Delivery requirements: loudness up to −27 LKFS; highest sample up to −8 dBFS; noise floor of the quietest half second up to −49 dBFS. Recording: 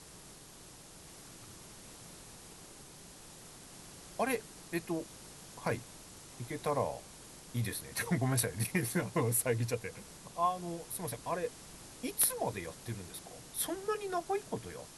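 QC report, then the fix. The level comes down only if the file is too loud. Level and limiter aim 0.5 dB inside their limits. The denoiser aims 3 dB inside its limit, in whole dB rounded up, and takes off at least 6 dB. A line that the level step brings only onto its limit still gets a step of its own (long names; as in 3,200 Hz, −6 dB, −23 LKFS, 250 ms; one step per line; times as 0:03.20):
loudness −35.5 LKFS: in spec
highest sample −15.0 dBFS: in spec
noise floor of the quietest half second −53 dBFS: in spec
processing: no processing needed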